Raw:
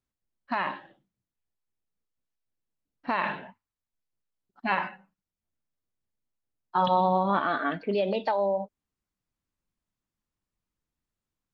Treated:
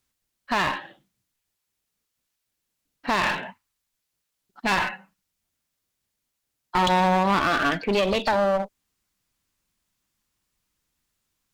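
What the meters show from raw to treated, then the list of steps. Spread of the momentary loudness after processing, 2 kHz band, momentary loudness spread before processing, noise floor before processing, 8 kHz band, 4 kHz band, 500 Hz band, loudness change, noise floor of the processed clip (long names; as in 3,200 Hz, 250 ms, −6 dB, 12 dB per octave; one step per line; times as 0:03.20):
14 LU, +7.5 dB, 14 LU, below −85 dBFS, can't be measured, +11.5 dB, +3.0 dB, +4.5 dB, −80 dBFS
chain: tilt shelving filter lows −5 dB, about 1,400 Hz
in parallel at −0.5 dB: brickwall limiter −21.5 dBFS, peak gain reduction 8 dB
on the sum: asymmetric clip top −31.5 dBFS, bottom −16 dBFS
level +5 dB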